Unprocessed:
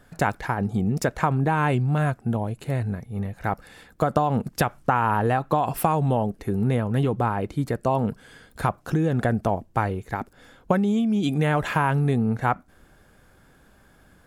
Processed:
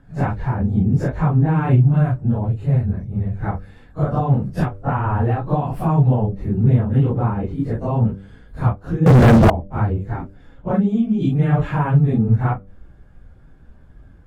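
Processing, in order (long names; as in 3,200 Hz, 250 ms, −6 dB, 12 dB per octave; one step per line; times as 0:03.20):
random phases in long frames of 100 ms
RIAA equalisation playback
hum removal 97.95 Hz, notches 6
0:09.06–0:09.50: leveller curve on the samples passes 5
level −2.5 dB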